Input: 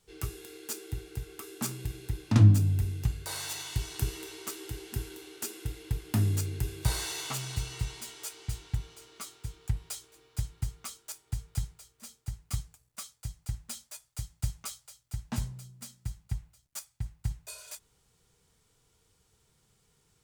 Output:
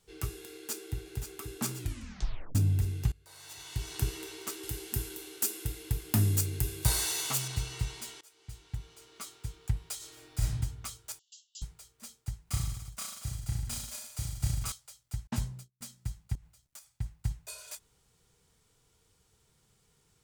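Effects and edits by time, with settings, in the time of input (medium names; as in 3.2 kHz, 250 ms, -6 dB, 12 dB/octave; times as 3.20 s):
0.52–1.04 s: echo throw 530 ms, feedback 70%, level -8.5 dB
1.78 s: tape stop 0.77 s
3.12–3.94 s: fade in quadratic, from -21 dB
4.63–7.48 s: treble shelf 7.3 kHz +11 dB
8.21–9.37 s: fade in, from -24 dB
9.96–10.59 s: reverb throw, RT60 0.89 s, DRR -5.5 dB
11.19–11.62 s: brick-wall FIR band-pass 2.7–7.7 kHz
12.44–14.72 s: reverse bouncing-ball echo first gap 30 ms, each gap 1.1×, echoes 8, each echo -2 dB
15.27–15.81 s: gate -46 dBFS, range -34 dB
16.35–16.87 s: compression 5:1, threshold -46 dBFS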